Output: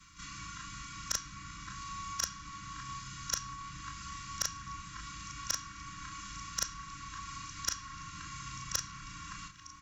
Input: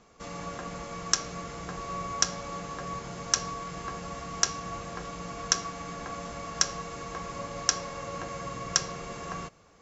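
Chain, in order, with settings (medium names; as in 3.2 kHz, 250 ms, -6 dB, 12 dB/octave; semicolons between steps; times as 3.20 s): short-time spectra conjugated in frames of 75 ms; comb 2.1 ms, depth 67%; reverse; upward compressor, threshold -49 dBFS; reverse; brick-wall FIR band-stop 320–1000 Hz; repeats whose band climbs or falls 594 ms, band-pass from 330 Hz, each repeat 0.7 oct, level -9 dB; one-sided clip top -19.5 dBFS; three bands compressed up and down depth 40%; trim -3.5 dB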